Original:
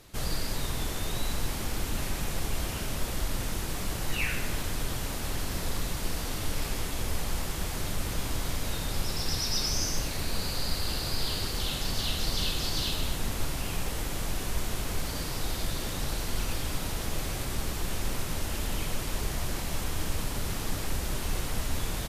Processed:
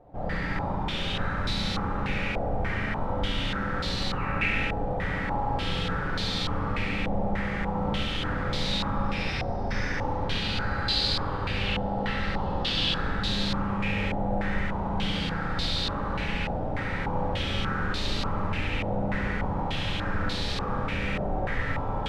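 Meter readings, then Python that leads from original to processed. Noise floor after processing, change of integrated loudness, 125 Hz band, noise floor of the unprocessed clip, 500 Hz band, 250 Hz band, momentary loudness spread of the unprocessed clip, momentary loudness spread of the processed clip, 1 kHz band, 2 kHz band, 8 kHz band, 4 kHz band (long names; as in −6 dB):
−31 dBFS, +3.5 dB, +4.0 dB, −34 dBFS, +6.5 dB, +7.0 dB, 4 LU, 4 LU, +9.0 dB, +7.0 dB, −14.5 dB, +3.0 dB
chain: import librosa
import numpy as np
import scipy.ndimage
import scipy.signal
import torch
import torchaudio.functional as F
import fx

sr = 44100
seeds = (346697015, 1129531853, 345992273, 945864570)

y = fx.room_flutter(x, sr, wall_m=12.0, rt60_s=1.3)
y = fx.rev_fdn(y, sr, rt60_s=1.6, lf_ratio=1.55, hf_ratio=0.5, size_ms=11.0, drr_db=-1.5)
y = fx.filter_held_lowpass(y, sr, hz=3.4, low_hz=720.0, high_hz=4000.0)
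y = y * librosa.db_to_amplitude(-3.0)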